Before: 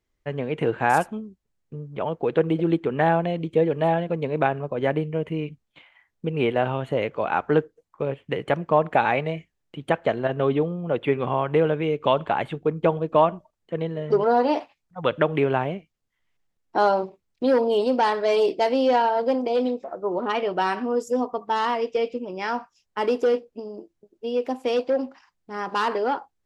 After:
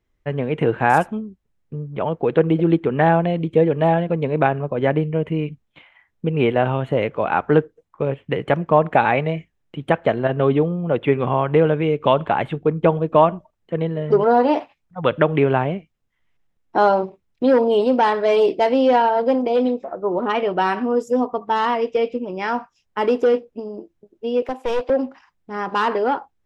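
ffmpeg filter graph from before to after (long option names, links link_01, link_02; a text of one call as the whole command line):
ffmpeg -i in.wav -filter_complex "[0:a]asettb=1/sr,asplit=3[link_01][link_02][link_03];[link_01]atrim=end=24.424[link_04];[link_02]atrim=start=24.42:end=24.9,asetpts=PTS-STARTPTS,afade=type=in:duration=0.004:curve=qsin,afade=type=out:start_time=0.476:duration=0.004:curve=qsin,highpass=frequency=320:width=0.5412,highpass=frequency=320:width=1.3066,aeval=exprs='clip(val(0),-1,0.0355)':channel_layout=same[link_05];[link_03]atrim=start=24.896[link_06];[link_04][link_05]acrossfade=duration=0.004:curve1=hsin:curve2=qsin[link_07];[link_07][link_06]acrossfade=duration=0.004:curve1=qsin:curve2=hsin,bass=frequency=250:gain=3,treble=frequency=4000:gain=-7,bandreject=frequency=4500:width=16,volume=4dB" out.wav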